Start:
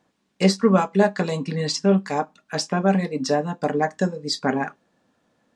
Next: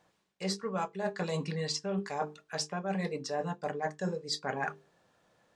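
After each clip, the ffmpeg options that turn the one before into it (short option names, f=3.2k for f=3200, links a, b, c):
-af "equalizer=f=250:w=3.3:g=-14,bandreject=f=50:t=h:w=6,bandreject=f=100:t=h:w=6,bandreject=f=150:t=h:w=6,bandreject=f=200:t=h:w=6,bandreject=f=250:t=h:w=6,bandreject=f=300:t=h:w=6,bandreject=f=350:t=h:w=6,bandreject=f=400:t=h:w=6,bandreject=f=450:t=h:w=6,areverse,acompressor=threshold=-30dB:ratio=12,areverse"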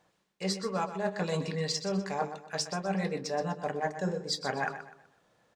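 -filter_complex "[0:a]asplit=2[a][b];[b]aeval=exprs='sgn(val(0))*max(abs(val(0))-0.00473,0)':c=same,volume=-11.5dB[c];[a][c]amix=inputs=2:normalize=0,aecho=1:1:125|250|375|500:0.282|0.0958|0.0326|0.0111"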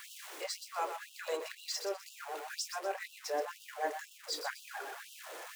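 -af "aeval=exprs='val(0)+0.5*0.0178*sgn(val(0))':c=same,equalizer=f=4.4k:w=1.2:g=-4,afftfilt=real='re*gte(b*sr/1024,280*pow(2700/280,0.5+0.5*sin(2*PI*2*pts/sr)))':imag='im*gte(b*sr/1024,280*pow(2700/280,0.5+0.5*sin(2*PI*2*pts/sr)))':win_size=1024:overlap=0.75,volume=-4dB"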